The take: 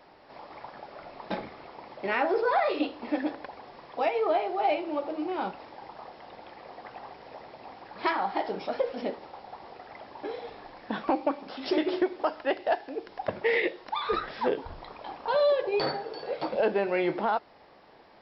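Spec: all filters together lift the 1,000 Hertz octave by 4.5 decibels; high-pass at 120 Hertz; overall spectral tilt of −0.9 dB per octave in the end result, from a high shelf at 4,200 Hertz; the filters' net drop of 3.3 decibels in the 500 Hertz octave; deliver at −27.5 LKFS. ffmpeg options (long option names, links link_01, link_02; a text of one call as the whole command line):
ffmpeg -i in.wav -af "highpass=120,equalizer=frequency=500:width_type=o:gain=-7,equalizer=frequency=1000:width_type=o:gain=8,highshelf=frequency=4200:gain=8,volume=1dB" out.wav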